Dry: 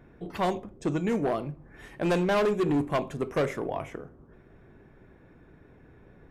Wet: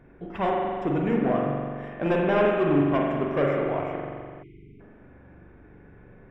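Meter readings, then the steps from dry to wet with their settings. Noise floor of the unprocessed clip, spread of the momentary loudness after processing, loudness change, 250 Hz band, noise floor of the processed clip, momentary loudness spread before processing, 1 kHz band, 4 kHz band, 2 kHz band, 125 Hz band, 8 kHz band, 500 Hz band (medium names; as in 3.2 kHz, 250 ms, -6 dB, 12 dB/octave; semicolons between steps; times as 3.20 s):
-56 dBFS, 13 LU, +3.5 dB, +4.0 dB, -51 dBFS, 16 LU, +4.0 dB, -2.0 dB, +3.5 dB, +3.5 dB, under -15 dB, +4.0 dB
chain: Savitzky-Golay filter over 25 samples; spring tank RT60 2 s, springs 42 ms, chirp 75 ms, DRR -1.5 dB; spectral selection erased 4.43–4.80 s, 440–2000 Hz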